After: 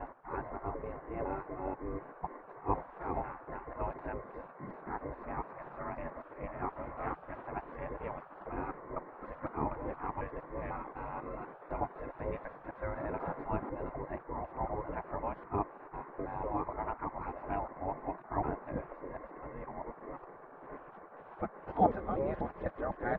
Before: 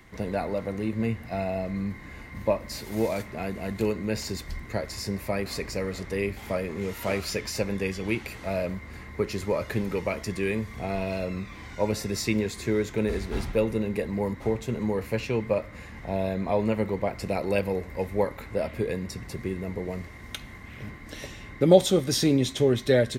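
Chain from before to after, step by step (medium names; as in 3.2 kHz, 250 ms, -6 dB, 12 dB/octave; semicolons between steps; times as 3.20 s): time reversed locally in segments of 249 ms; spectral gate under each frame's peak -15 dB weak; low-pass 1.2 kHz 24 dB/octave; trim +5 dB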